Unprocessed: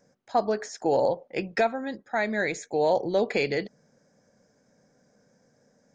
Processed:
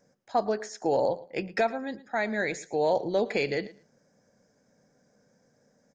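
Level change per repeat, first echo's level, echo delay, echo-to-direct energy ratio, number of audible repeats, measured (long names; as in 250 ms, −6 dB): −15.5 dB, −19.0 dB, 112 ms, −19.0 dB, 2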